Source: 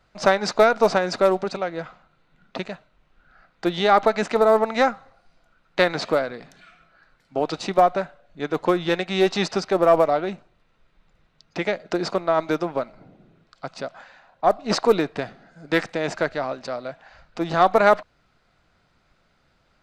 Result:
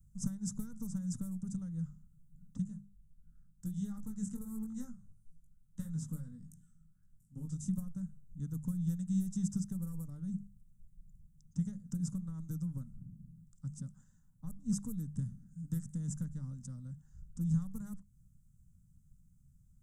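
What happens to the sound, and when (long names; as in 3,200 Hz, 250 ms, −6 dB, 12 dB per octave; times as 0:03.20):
0:02.64–0:07.69: chorus effect 1.5 Hz, delay 18.5 ms, depth 2.3 ms
whole clip: downward compressor 5 to 1, threshold −22 dBFS; inverse Chebyshev band-stop filter 340–4,600 Hz, stop band 40 dB; mains-hum notches 50/100/150/200 Hz; level +5.5 dB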